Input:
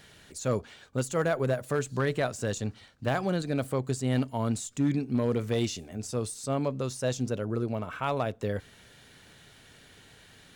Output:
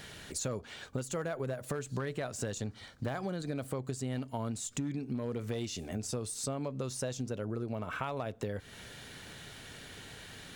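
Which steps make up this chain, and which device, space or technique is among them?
2.61–3.58 s: band-stop 2.7 kHz, Q 9.6; serial compression, leveller first (compression 2:1, threshold -30 dBFS, peak gain reduction 5 dB; compression 5:1, threshold -40 dBFS, peak gain reduction 12 dB); trim +6 dB

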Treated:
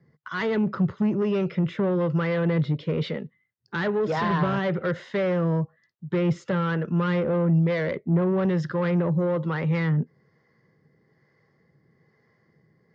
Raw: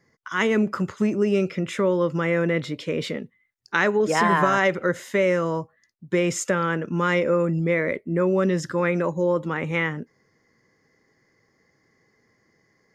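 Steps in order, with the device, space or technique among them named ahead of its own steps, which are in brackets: guitar amplifier with harmonic tremolo (harmonic tremolo 1.1 Hz, depth 50%, crossover 460 Hz; saturation -23 dBFS, distortion -11 dB; cabinet simulation 89–4300 Hz, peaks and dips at 150 Hz +7 dB, 280 Hz -7 dB, 2.4 kHz -5 dB); bass shelf 420 Hz +7.5 dB

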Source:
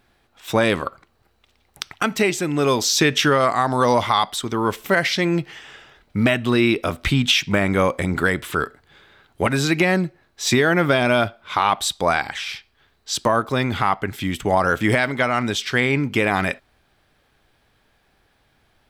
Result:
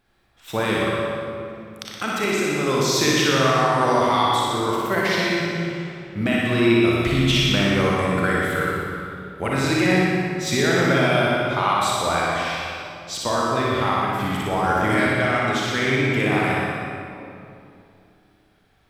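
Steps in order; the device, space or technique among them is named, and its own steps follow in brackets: tunnel (flutter echo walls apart 10.3 m, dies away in 1 s; reverberation RT60 2.6 s, pre-delay 30 ms, DRR -2 dB); trim -7 dB

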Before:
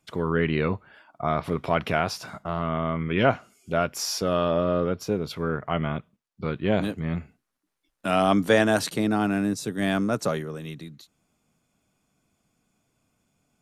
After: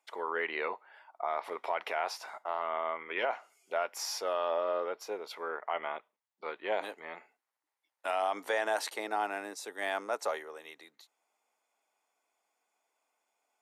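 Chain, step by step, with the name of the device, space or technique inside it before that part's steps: laptop speaker (high-pass 430 Hz 24 dB/octave; peaking EQ 870 Hz +10 dB 0.55 oct; peaking EQ 2 kHz +6.5 dB 0.4 oct; peak limiter -12.5 dBFS, peak gain reduction 8.5 dB); trim -8 dB

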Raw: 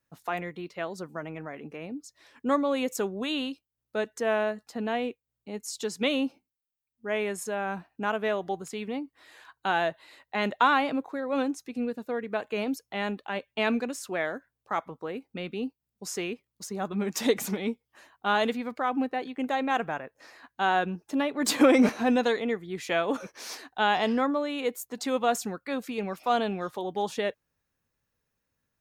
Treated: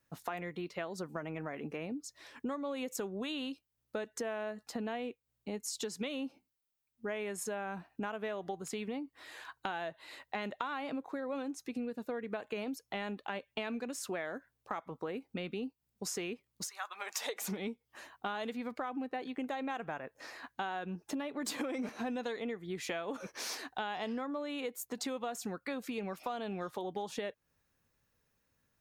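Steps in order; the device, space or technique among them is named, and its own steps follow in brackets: 16.67–17.47 s: high-pass 1.3 kHz -> 380 Hz 24 dB/octave; serial compression, leveller first (compression 2.5:1, threshold -28 dBFS, peak gain reduction 9 dB; compression 4:1, threshold -40 dBFS, peak gain reduction 14 dB); trim +3 dB

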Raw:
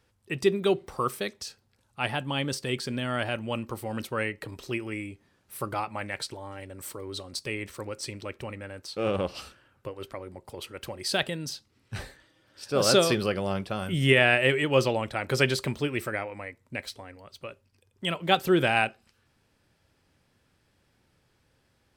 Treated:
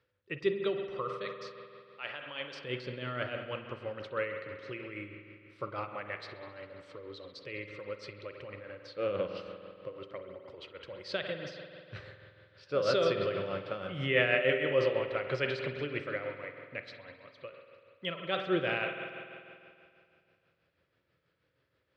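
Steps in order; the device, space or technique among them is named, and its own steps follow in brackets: 1.25–2.62 s: high-pass 840 Hz 6 dB/octave; combo amplifier with spring reverb and tremolo (spring tank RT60 2.4 s, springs 48 ms, chirp 20 ms, DRR 4.5 dB; tremolo 6.2 Hz, depth 48%; cabinet simulation 92–4400 Hz, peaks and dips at 230 Hz -8 dB, 530 Hz +8 dB, 800 Hz -9 dB, 1.3 kHz +4 dB, 2 kHz +3 dB); trim -7 dB

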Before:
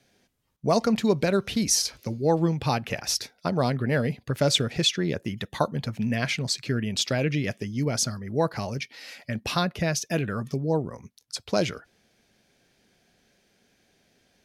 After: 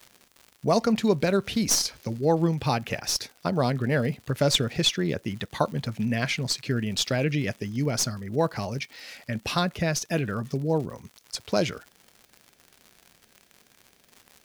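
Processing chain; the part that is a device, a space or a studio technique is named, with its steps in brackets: record under a worn stylus (tracing distortion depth 0.022 ms; crackle 120 per s -37 dBFS; white noise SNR 41 dB)

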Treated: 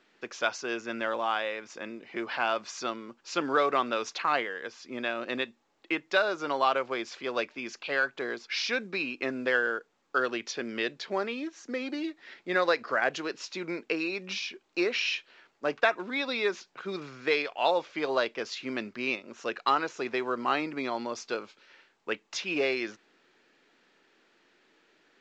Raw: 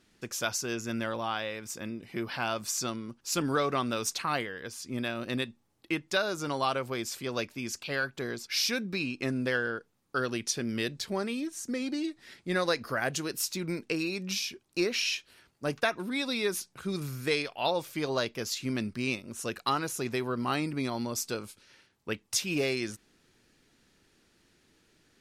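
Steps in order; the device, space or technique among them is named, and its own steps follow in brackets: high-pass 80 Hz 24 dB/octave; telephone (band-pass 400–3000 Hz; trim +4.5 dB; µ-law 128 kbps 16 kHz)

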